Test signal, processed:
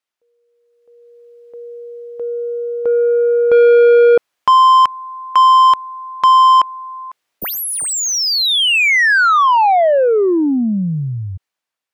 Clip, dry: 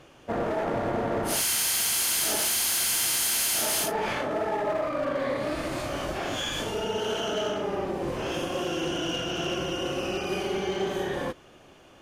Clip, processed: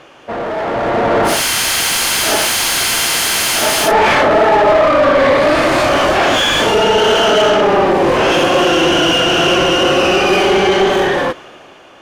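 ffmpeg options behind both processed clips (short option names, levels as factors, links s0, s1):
-filter_complex "[0:a]asplit=2[s0][s1];[s1]highpass=f=720:p=1,volume=7.08,asoftclip=type=tanh:threshold=0.1[s2];[s0][s2]amix=inputs=2:normalize=0,lowpass=f=2500:p=1,volume=0.501,dynaudnorm=f=180:g=11:m=3.76,volume=1.68"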